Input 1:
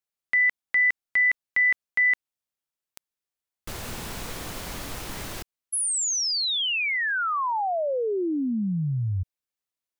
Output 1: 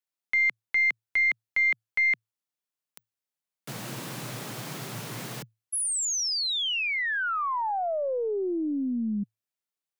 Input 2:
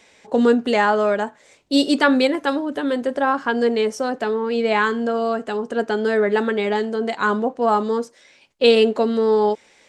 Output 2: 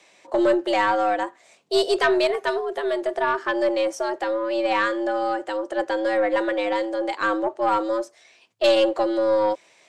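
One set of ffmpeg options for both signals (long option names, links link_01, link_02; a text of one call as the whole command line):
ffmpeg -i in.wav -af "afreqshift=110,aeval=exprs='(tanh(2.51*val(0)+0.2)-tanh(0.2))/2.51':channel_layout=same,volume=-2dB" out.wav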